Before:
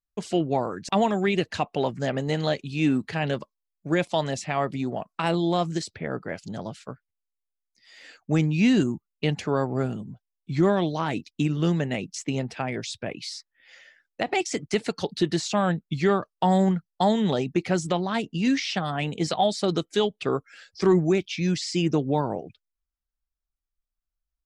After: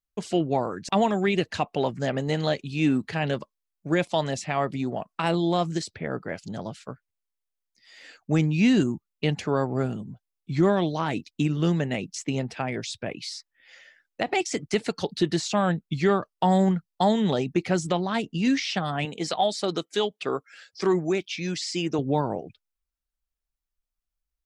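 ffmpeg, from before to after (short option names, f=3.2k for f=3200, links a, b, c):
-filter_complex "[0:a]asettb=1/sr,asplit=3[a][b][c];[a]atrim=end=19.054[d];[b]atrim=start=19.05:end=21.99,asetpts=PTS-STARTPTS,afade=t=in:d=0.004:c=qsin,afade=t=out:st=2.936:d=0.004:c=qsin,highpass=f=350:p=1[e];[c]atrim=start=21.986[f];[d][e]acrossfade=d=0.004:c1=hsin:c2=qsin[g];[g][f]acrossfade=d=0.004:c1=qsin:c2=hsin"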